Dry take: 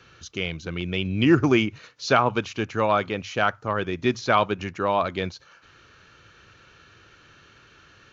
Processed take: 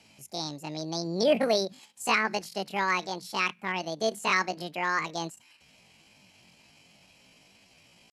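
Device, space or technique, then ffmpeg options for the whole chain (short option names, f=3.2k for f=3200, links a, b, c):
chipmunk voice: -af "asetrate=78577,aresample=44100,atempo=0.561231,volume=-5.5dB"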